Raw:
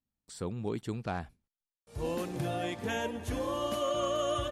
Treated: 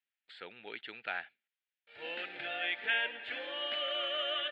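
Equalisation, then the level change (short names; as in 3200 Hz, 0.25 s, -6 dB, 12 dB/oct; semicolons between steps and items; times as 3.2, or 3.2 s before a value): resonant high-pass 1300 Hz, resonance Q 1.5; LPF 3500 Hz 24 dB/oct; fixed phaser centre 2600 Hz, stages 4; +8.0 dB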